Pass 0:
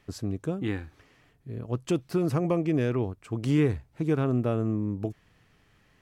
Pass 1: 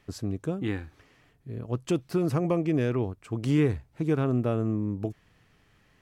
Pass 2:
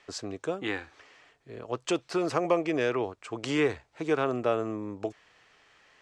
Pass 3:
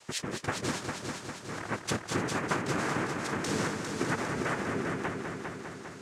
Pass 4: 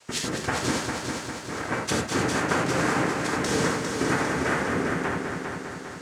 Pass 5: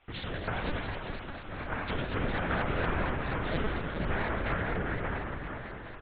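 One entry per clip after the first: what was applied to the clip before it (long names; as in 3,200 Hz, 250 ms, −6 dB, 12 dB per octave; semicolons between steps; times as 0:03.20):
no processing that can be heard
low-pass with resonance 7,800 Hz, resonance Q 2.2; three-way crossover with the lows and the highs turned down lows −20 dB, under 410 Hz, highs −13 dB, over 5,700 Hz; level +6 dB
downward compressor, threshold −33 dBFS, peak gain reduction 13.5 dB; cochlear-implant simulation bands 3; echo machine with several playback heads 201 ms, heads first and second, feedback 65%, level −8 dB; level +3.5 dB
in parallel at −4.5 dB: dead-zone distortion −52.5 dBFS; on the sum: reverb whose tail is shaped and stops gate 120 ms flat, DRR 0 dB
single-tap delay 89 ms −5 dB; linear-prediction vocoder at 8 kHz pitch kept; pitch modulation by a square or saw wave saw up 4.2 Hz, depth 160 cents; level −6.5 dB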